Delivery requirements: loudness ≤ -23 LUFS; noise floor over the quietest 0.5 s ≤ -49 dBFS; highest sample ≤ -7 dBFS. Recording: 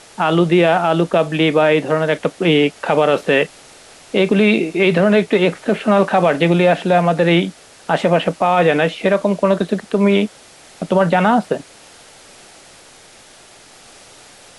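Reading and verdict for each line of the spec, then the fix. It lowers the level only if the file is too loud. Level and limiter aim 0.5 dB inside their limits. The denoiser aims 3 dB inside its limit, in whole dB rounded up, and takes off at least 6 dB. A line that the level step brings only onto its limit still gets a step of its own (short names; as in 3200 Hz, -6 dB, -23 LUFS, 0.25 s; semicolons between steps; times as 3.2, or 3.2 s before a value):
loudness -15.5 LUFS: fail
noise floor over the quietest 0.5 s -44 dBFS: fail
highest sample -4.0 dBFS: fail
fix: gain -8 dB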